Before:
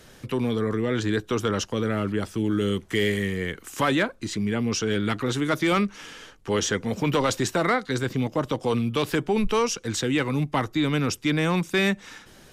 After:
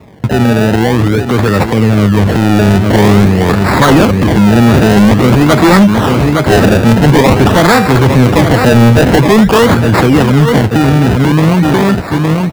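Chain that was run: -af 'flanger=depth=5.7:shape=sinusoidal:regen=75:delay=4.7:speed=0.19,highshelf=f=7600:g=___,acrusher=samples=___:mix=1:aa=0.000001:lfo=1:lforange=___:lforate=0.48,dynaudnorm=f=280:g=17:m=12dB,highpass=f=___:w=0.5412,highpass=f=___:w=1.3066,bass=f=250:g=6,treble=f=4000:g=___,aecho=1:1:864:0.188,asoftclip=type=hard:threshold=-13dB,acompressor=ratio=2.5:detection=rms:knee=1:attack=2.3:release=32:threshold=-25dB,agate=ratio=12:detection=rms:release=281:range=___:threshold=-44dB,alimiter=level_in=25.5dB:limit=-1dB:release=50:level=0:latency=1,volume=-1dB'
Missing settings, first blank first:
10.5, 28, 28, 63, 63, -8, -11dB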